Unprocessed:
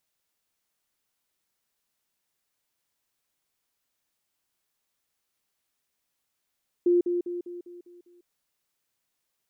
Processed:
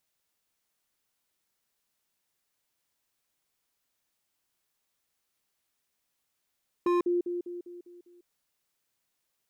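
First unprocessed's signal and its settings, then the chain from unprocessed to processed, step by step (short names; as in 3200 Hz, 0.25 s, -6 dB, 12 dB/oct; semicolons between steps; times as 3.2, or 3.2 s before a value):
level ladder 351 Hz -17.5 dBFS, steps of -6 dB, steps 7, 0.15 s 0.05 s
wavefolder -21 dBFS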